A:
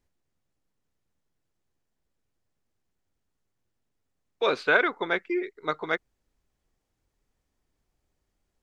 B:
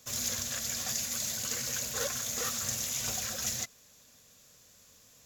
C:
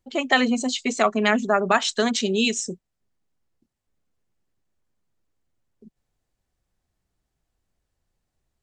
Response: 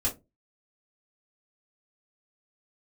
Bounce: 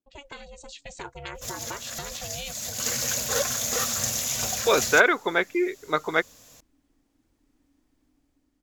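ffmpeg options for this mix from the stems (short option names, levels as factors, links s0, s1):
-filter_complex "[0:a]adelay=250,volume=0.891[s0];[1:a]equalizer=f=700:w=1.5:g=4.5,adelay=1350,volume=1.06[s1];[2:a]asubboost=boost=8:cutoff=56,acrossover=split=1000|3700[s2][s3][s4];[s2]acompressor=threshold=0.0355:ratio=4[s5];[s3]acompressor=threshold=0.0282:ratio=4[s6];[s4]acompressor=threshold=0.0251:ratio=4[s7];[s5][s6][s7]amix=inputs=3:normalize=0,aeval=exprs='val(0)*sin(2*PI*280*n/s)':c=same,volume=0.224,asplit=2[s8][s9];[s9]apad=whole_len=291233[s10];[s1][s10]sidechaincompress=threshold=0.00316:ratio=8:attack=5.3:release=234[s11];[s0][s11][s8]amix=inputs=3:normalize=0,dynaudnorm=f=250:g=7:m=2.11"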